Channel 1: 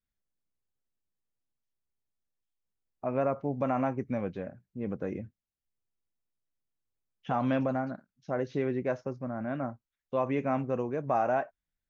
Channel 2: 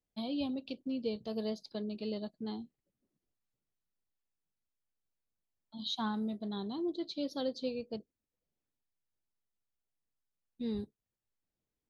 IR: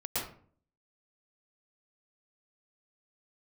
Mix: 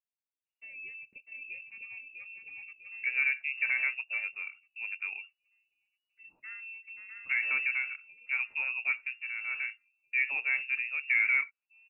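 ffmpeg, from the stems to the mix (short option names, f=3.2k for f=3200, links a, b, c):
-filter_complex "[0:a]highpass=150,agate=range=-8dB:threshold=-59dB:ratio=16:detection=peak,equalizer=f=670:t=o:w=1.2:g=7,volume=-5.5dB[a];[1:a]adelay=450,volume=-9.5dB,afade=t=out:st=7.01:d=0.29:silence=0.251189,asplit=2[b][c];[c]volume=-4.5dB,aecho=0:1:649|1298|1947|2596|3245|3894:1|0.42|0.176|0.0741|0.0311|0.0131[d];[a][b][d]amix=inputs=3:normalize=0,lowpass=f=2.5k:t=q:w=0.5098,lowpass=f=2.5k:t=q:w=0.6013,lowpass=f=2.5k:t=q:w=0.9,lowpass=f=2.5k:t=q:w=2.563,afreqshift=-2900"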